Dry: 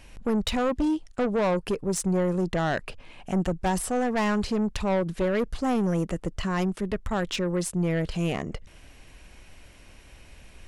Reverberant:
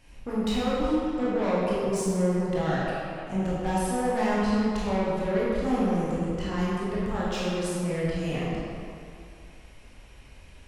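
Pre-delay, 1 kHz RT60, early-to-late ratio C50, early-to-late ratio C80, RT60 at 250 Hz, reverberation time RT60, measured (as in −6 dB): 16 ms, 2.5 s, −3.5 dB, −1.5 dB, 2.3 s, 2.5 s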